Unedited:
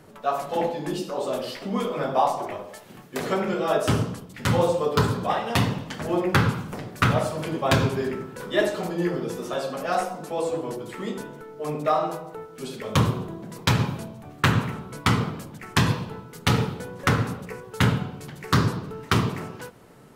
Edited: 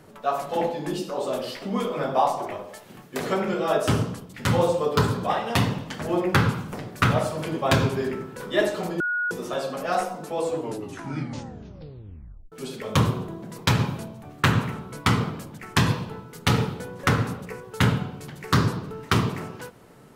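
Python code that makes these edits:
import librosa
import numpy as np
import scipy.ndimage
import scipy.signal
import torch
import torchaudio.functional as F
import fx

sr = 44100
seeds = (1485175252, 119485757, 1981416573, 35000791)

y = fx.edit(x, sr, fx.bleep(start_s=9.0, length_s=0.31, hz=1450.0, db=-22.5),
    fx.tape_stop(start_s=10.55, length_s=1.97), tone=tone)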